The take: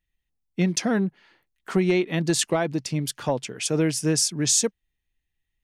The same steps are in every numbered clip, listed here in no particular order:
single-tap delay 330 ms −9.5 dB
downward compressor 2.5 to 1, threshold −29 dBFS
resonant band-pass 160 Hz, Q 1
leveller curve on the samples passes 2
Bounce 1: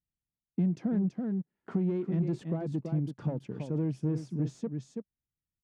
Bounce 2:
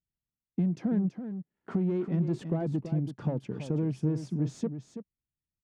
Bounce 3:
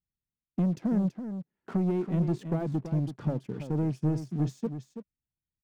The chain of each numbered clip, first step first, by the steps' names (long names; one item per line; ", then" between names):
single-tap delay, then leveller curve on the samples, then downward compressor, then resonant band-pass
leveller curve on the samples, then resonant band-pass, then downward compressor, then single-tap delay
downward compressor, then resonant band-pass, then leveller curve on the samples, then single-tap delay